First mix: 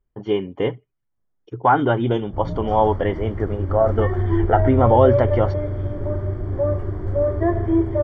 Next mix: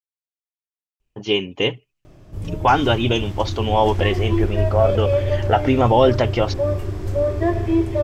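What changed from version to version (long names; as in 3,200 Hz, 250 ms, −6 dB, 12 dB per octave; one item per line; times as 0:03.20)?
speech: entry +1.00 s
master: remove Savitzky-Golay smoothing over 41 samples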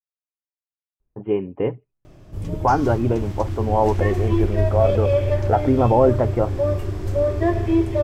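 speech: add Gaussian smoothing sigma 6 samples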